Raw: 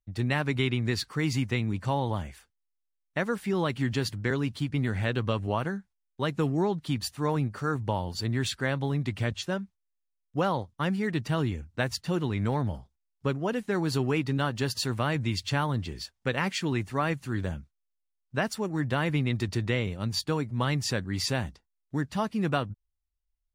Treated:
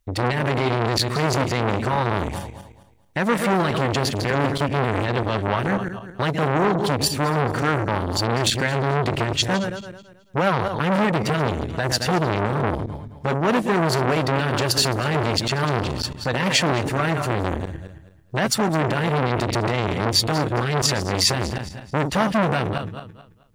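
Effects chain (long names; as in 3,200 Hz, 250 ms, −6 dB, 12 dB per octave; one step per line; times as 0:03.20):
feedback delay that plays each chunk backwards 109 ms, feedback 51%, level −11 dB
boost into a limiter +21 dB
saturating transformer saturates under 980 Hz
level −5 dB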